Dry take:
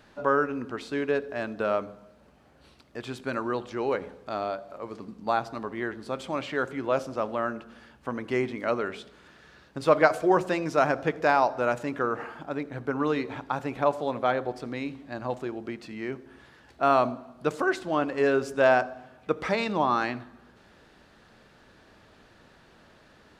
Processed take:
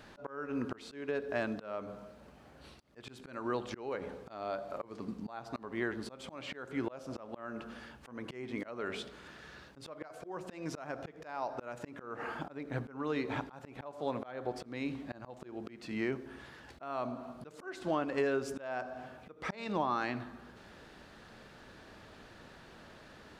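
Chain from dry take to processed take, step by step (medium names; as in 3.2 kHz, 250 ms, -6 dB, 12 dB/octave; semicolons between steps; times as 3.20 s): compression 6:1, threshold -31 dBFS, peak gain reduction 16.5 dB; slow attack 291 ms; trim +2 dB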